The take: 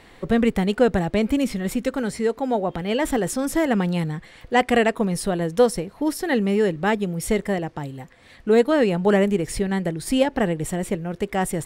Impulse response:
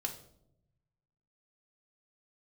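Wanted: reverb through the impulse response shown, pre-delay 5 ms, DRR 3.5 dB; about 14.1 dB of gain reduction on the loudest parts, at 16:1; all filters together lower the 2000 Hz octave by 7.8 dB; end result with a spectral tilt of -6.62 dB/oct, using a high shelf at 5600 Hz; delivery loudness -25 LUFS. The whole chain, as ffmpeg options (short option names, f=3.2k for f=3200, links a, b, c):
-filter_complex "[0:a]equalizer=f=2k:t=o:g=-8.5,highshelf=f=5.6k:g=-7.5,acompressor=threshold=-26dB:ratio=16,asplit=2[a][b];[1:a]atrim=start_sample=2205,adelay=5[c];[b][c]afir=irnorm=-1:irlink=0,volume=-4dB[d];[a][d]amix=inputs=2:normalize=0,volume=4.5dB"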